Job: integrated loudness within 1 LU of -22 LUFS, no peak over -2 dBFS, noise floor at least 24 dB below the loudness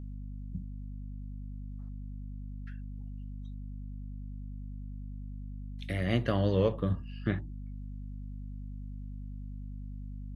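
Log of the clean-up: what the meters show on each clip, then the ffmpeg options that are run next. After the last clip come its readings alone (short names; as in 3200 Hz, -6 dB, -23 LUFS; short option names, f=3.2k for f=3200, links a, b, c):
hum 50 Hz; harmonics up to 250 Hz; hum level -37 dBFS; loudness -37.5 LUFS; peak -14.0 dBFS; loudness target -22.0 LUFS
-> -af "bandreject=f=50:t=h:w=6,bandreject=f=100:t=h:w=6,bandreject=f=150:t=h:w=6,bandreject=f=200:t=h:w=6,bandreject=f=250:t=h:w=6"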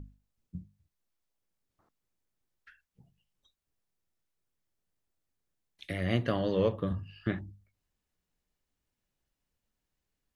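hum none; loudness -32.0 LUFS; peak -14.0 dBFS; loudness target -22.0 LUFS
-> -af "volume=10dB"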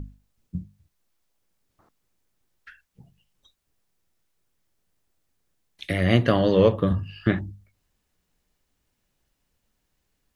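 loudness -22.0 LUFS; peak -4.0 dBFS; noise floor -76 dBFS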